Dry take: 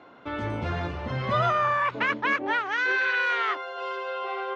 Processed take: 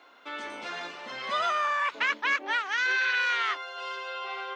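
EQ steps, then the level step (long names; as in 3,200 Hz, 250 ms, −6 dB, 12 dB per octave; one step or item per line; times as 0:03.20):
high-pass filter 200 Hz 24 dB per octave
spectral tilt +4.5 dB per octave
−4.5 dB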